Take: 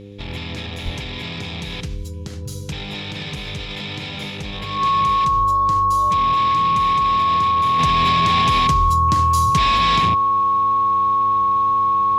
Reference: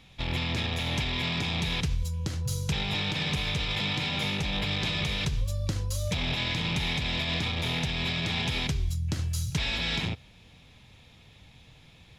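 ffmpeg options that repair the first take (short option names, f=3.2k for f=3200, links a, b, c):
-filter_complex "[0:a]bandreject=f=101:t=h:w=4,bandreject=f=202:t=h:w=4,bandreject=f=303:t=h:w=4,bandreject=f=404:t=h:w=4,bandreject=f=505:t=h:w=4,bandreject=f=1.1k:w=30,asplit=3[a][b][c];[a]afade=t=out:st=0.84:d=0.02[d];[b]highpass=f=140:w=0.5412,highpass=f=140:w=1.3066,afade=t=in:st=0.84:d=0.02,afade=t=out:st=0.96:d=0.02[e];[c]afade=t=in:st=0.96:d=0.02[f];[d][e][f]amix=inputs=3:normalize=0,asetnsamples=n=441:p=0,asendcmd='7.79 volume volume -8dB',volume=0dB"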